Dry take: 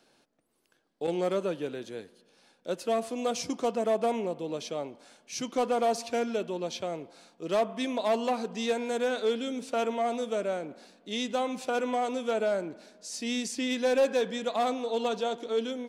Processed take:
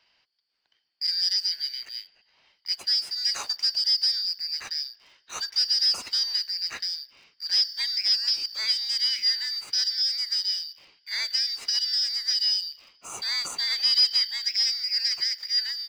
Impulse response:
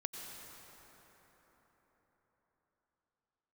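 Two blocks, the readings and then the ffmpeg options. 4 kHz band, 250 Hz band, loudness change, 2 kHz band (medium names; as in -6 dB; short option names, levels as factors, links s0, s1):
+18.5 dB, under -25 dB, +6.5 dB, +2.0 dB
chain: -filter_complex "[0:a]afftfilt=real='real(if(lt(b,272),68*(eq(floor(b/68),0)*3+eq(floor(b/68),1)*2+eq(floor(b/68),2)*1+eq(floor(b/68),3)*0)+mod(b,68),b),0)':imag='imag(if(lt(b,272),68*(eq(floor(b/68),0)*3+eq(floor(b/68),1)*2+eq(floor(b/68),2)*1+eq(floor(b/68),3)*0)+mod(b,68),b),0)':win_size=2048:overlap=0.75,lowshelf=f=450:g=-10.5,acrossover=split=320|530|4500[s0][s1][s2][s3];[s3]aeval=exprs='sgn(val(0))*max(abs(val(0))-0.002,0)':c=same[s4];[s0][s1][s2][s4]amix=inputs=4:normalize=0,volume=1.5"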